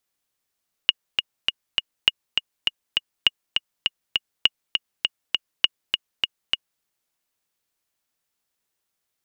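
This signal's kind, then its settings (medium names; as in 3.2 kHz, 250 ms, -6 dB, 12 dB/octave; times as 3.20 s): metronome 202 bpm, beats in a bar 4, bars 5, 2.87 kHz, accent 5 dB -1.5 dBFS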